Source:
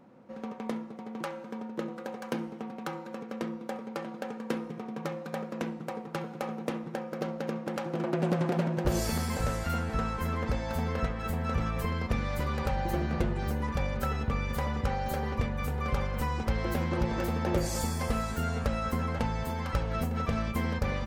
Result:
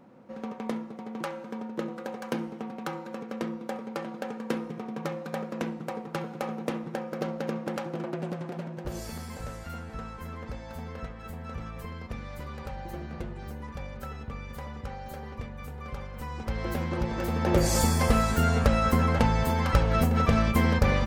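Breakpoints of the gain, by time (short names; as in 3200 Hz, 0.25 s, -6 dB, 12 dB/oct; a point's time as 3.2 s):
7.7 s +2 dB
8.42 s -8 dB
16.14 s -8 dB
16.66 s -0.5 dB
17.17 s -0.5 dB
17.71 s +7.5 dB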